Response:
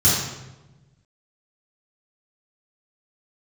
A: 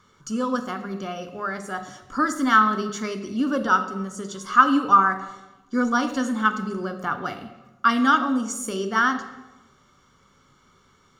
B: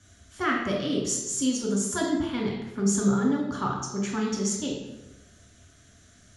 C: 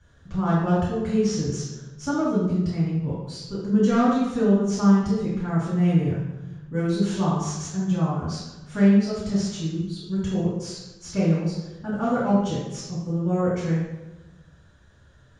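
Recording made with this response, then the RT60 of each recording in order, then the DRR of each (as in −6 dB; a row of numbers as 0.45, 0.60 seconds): C; 1.1, 1.1, 1.1 seconds; 7.5, −2.5, −10.0 decibels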